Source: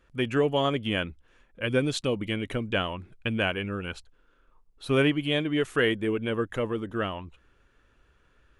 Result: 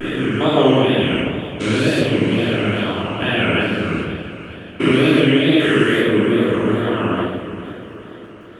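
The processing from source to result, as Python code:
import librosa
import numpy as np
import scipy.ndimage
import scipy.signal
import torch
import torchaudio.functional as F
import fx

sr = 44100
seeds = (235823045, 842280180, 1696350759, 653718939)

p1 = fx.spec_steps(x, sr, hold_ms=400)
p2 = scipy.signal.sosfilt(scipy.signal.butter(2, 59.0, 'highpass', fs=sr, output='sos'), p1)
p3 = fx.low_shelf(p2, sr, hz=160.0, db=-7.5)
p4 = fx.hum_notches(p3, sr, base_hz=50, count=3)
p5 = p4 + fx.echo_diffused(p4, sr, ms=513, feedback_pct=54, wet_db=-14, dry=0)
p6 = fx.wow_flutter(p5, sr, seeds[0], rate_hz=2.1, depth_cents=140.0)
p7 = fx.dmg_crackle(p6, sr, seeds[1], per_s=15.0, level_db=-58.0)
p8 = fx.room_shoebox(p7, sr, seeds[2], volume_m3=530.0, walls='mixed', distance_m=2.9)
p9 = fx.hpss(p8, sr, part='percussive', gain_db=6)
y = p9 * 10.0 ** (5.0 / 20.0)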